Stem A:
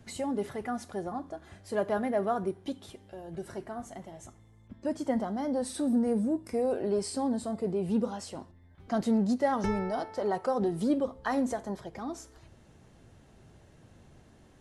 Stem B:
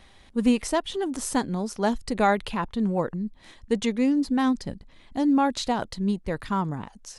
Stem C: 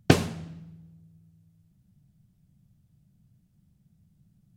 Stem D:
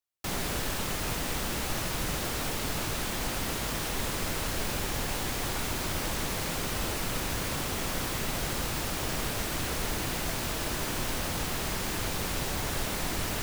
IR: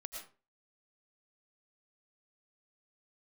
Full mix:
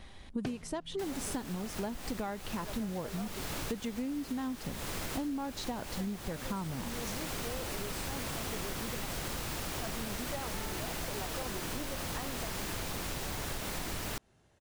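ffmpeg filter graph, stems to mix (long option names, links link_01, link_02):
-filter_complex "[0:a]lowshelf=frequency=500:gain=-7.5,adelay=900,volume=-6dB[link_01];[1:a]lowshelf=frequency=350:gain=5,volume=-0.5dB[link_02];[2:a]adelay=350,volume=-3.5dB[link_03];[3:a]adelay=750,volume=-2dB[link_04];[link_01][link_02][link_03][link_04]amix=inputs=4:normalize=0,acompressor=threshold=-33dB:ratio=20"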